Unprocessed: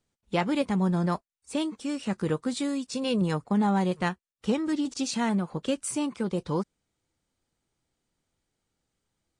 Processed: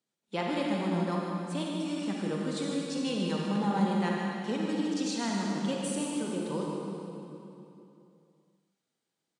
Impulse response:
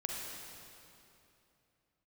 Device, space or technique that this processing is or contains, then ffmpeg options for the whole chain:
PA in a hall: -filter_complex "[0:a]highpass=f=160:w=0.5412,highpass=f=160:w=1.3066,equalizer=f=3.9k:t=o:w=0.87:g=3,aecho=1:1:153:0.447[a];[1:a]atrim=start_sample=2205[b];[a][b]afir=irnorm=-1:irlink=0,volume=-6dB"

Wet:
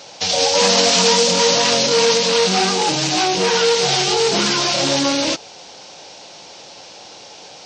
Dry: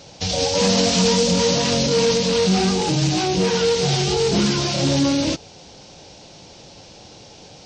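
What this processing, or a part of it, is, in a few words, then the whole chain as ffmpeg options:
filter by subtraction: -filter_complex "[0:a]asplit=2[a][b];[b]lowpass=1k,volume=-1[c];[a][c]amix=inputs=2:normalize=0,volume=5.5dB"

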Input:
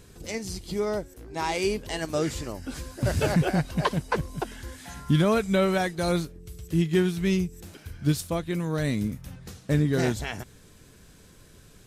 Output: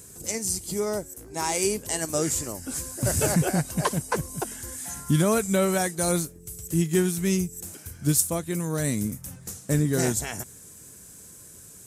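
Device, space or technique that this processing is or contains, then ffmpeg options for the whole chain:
budget condenser microphone: -af "highpass=72,highshelf=f=5.5k:t=q:w=1.5:g=13"

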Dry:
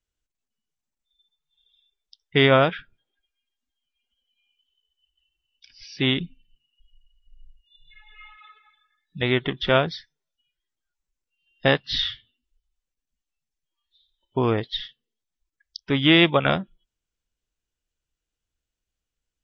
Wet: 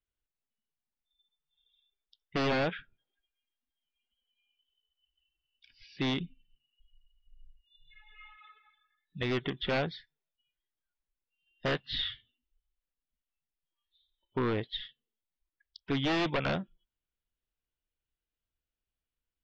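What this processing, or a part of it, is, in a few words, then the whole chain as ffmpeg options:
synthesiser wavefolder: -af "aeval=exprs='0.15*(abs(mod(val(0)/0.15+3,4)-2)-1)':c=same,lowpass=f=3.9k:w=0.5412,lowpass=f=3.9k:w=1.3066,volume=-6.5dB"

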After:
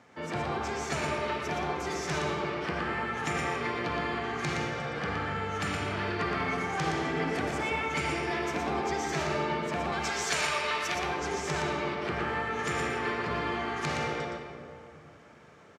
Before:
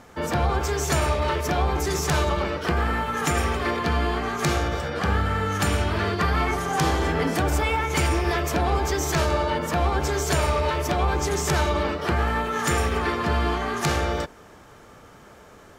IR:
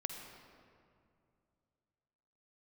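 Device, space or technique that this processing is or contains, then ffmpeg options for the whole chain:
PA in a hall: -filter_complex "[0:a]lowpass=6.9k,asettb=1/sr,asplit=3[a][b][c];[a]atrim=end=9.924[d];[b]atrim=start=9.92:end=10.95,asetpts=PTS-STARTPTS,afade=t=in:d=0.004:c=qsin,afade=t=out:st=1.026:d=0.004:c=qsin,tiltshelf=f=880:g=-8.5[e];[c]atrim=start=10.946[f];[d][e]acrossfade=d=0.004:c1=hsin:c2=qsin[g];[g][f]acrossfade=d=0.004:c1=qsin:c2=hsin,highpass=f=100:w=0.5412,highpass=f=100:w=1.3066,equalizer=f=2.2k:t=o:w=0.67:g=5,aecho=1:1:118:0.562[h];[1:a]atrim=start_sample=2205[i];[h][i]afir=irnorm=-1:irlink=0,volume=-8.5dB"

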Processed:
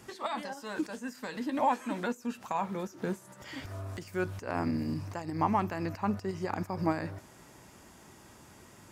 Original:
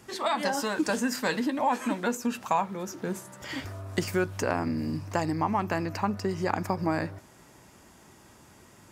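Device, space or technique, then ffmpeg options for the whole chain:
de-esser from a sidechain: -filter_complex "[0:a]asplit=2[a][b];[b]highpass=f=5k:w=0.5412,highpass=f=5k:w=1.3066,apad=whole_len=393321[c];[a][c]sidechaincompress=threshold=-52dB:ratio=4:attack=0.58:release=99"

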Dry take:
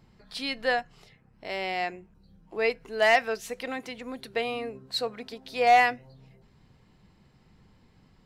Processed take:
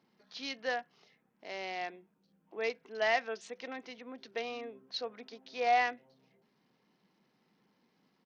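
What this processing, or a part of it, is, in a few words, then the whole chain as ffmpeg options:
Bluetooth headset: -af "highpass=f=200:w=0.5412,highpass=f=200:w=1.3066,aresample=16000,aresample=44100,volume=-8.5dB" -ar 48000 -c:a sbc -b:a 64k

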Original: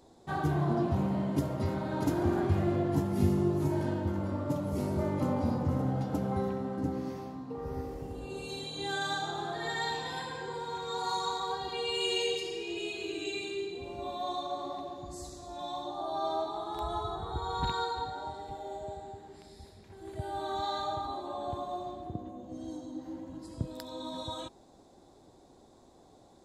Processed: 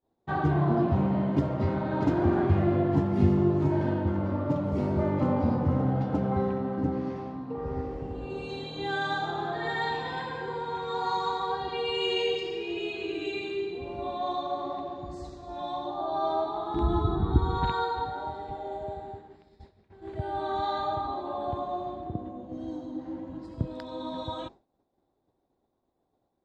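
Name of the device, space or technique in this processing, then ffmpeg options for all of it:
hearing-loss simulation: -filter_complex "[0:a]asettb=1/sr,asplit=3[a][b][c];[a]atrim=end=16.744[d];[b]atrim=start=16.74:end=17.58,asetpts=PTS-STARTPTS,afade=t=in:d=0.004:c=qsin,afade=t=out:st=0.836:d=0.004:c=qsin,lowshelf=f=390:t=q:w=3:g=10[e];[c]atrim=start=17.576[f];[d][e]acrossfade=d=0.004:c1=hsin:c2=qsin[g];[g][f]acrossfade=d=0.004:c1=qsin:c2=hsin,lowpass=2.9k,agate=range=-33dB:threshold=-44dB:ratio=3:detection=peak,volume=4.5dB"

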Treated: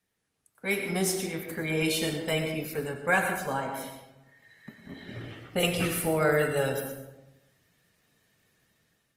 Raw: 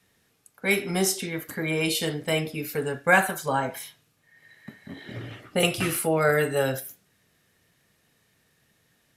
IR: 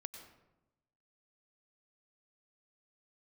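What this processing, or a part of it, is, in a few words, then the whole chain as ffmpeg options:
speakerphone in a meeting room: -filter_complex "[1:a]atrim=start_sample=2205[a];[0:a][a]afir=irnorm=-1:irlink=0,dynaudnorm=f=240:g=5:m=9.5dB,volume=-8dB" -ar 48000 -c:a libopus -b:a 24k

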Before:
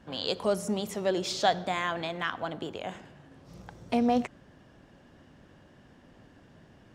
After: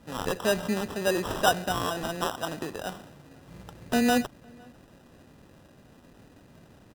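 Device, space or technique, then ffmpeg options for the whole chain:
crushed at another speed: -filter_complex "[0:a]asetrate=22050,aresample=44100,acrusher=samples=40:mix=1:aa=0.000001,asetrate=88200,aresample=44100,asplit=2[a][b];[b]adelay=507.3,volume=-28dB,highshelf=f=4k:g=-11.4[c];[a][c]amix=inputs=2:normalize=0,volume=2dB"

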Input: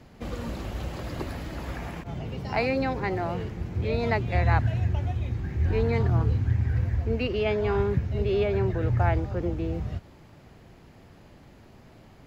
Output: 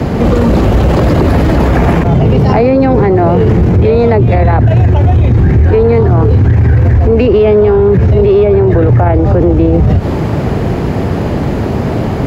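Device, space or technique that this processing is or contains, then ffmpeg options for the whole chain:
mastering chain: -filter_complex "[0:a]highpass=51,equalizer=f=430:t=o:w=0.28:g=3.5,acrossover=split=290|600[a][b][c];[a]acompressor=threshold=-28dB:ratio=4[d];[b]acompressor=threshold=-27dB:ratio=4[e];[c]acompressor=threshold=-35dB:ratio=4[f];[d][e][f]amix=inputs=3:normalize=0,acompressor=threshold=-34dB:ratio=2.5,asoftclip=type=tanh:threshold=-27.5dB,tiltshelf=f=1.5k:g=6,alimiter=level_in=34dB:limit=-1dB:release=50:level=0:latency=1,volume=-1dB"

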